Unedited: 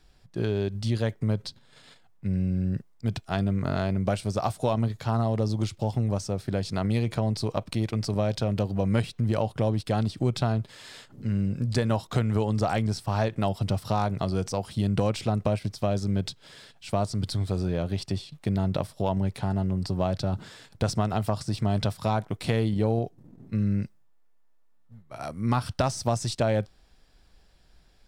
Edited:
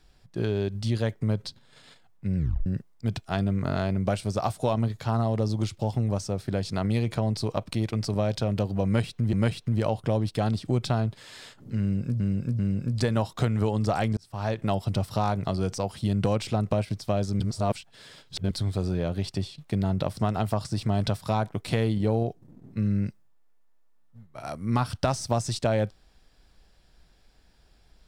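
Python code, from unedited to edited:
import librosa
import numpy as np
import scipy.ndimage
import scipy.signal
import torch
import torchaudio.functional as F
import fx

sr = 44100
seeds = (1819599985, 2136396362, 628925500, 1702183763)

y = fx.edit(x, sr, fx.tape_stop(start_s=2.37, length_s=0.29),
    fx.repeat(start_s=8.85, length_s=0.48, count=2),
    fx.repeat(start_s=11.33, length_s=0.39, count=3),
    fx.fade_in_span(start_s=12.91, length_s=0.43),
    fx.reverse_span(start_s=16.14, length_s=1.11),
    fx.cut(start_s=18.91, length_s=2.02), tone=tone)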